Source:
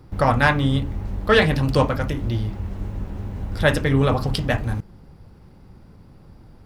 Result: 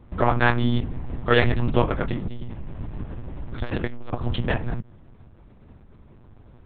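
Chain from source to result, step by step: dynamic bell 160 Hz, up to +5 dB, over -37 dBFS, Q 3.1; monotone LPC vocoder at 8 kHz 120 Hz; 2.21–4.21 s: transformer saturation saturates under 240 Hz; trim -2.5 dB

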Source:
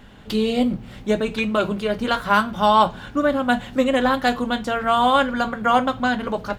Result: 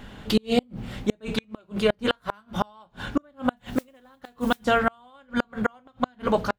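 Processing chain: inverted gate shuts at -12 dBFS, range -38 dB; 3.56–4.65 s: modulation noise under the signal 24 dB; trim +3 dB

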